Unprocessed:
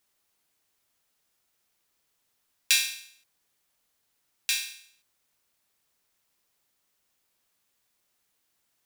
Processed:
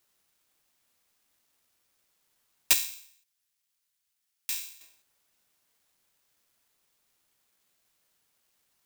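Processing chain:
bad sample-rate conversion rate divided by 4×, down none, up zero stuff
0:02.73–0:04.81: guitar amp tone stack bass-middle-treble 5-5-5
level −4.5 dB

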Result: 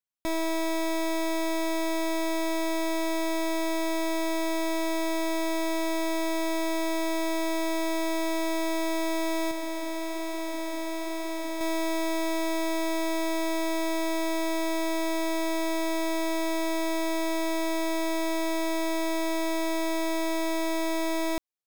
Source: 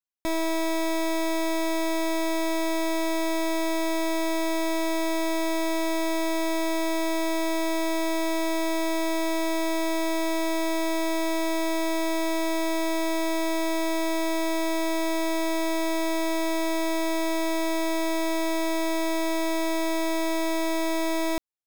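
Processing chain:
0:09.51–0:11.61: flanger 1.1 Hz, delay 3 ms, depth 7.4 ms, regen −82%
level −2 dB

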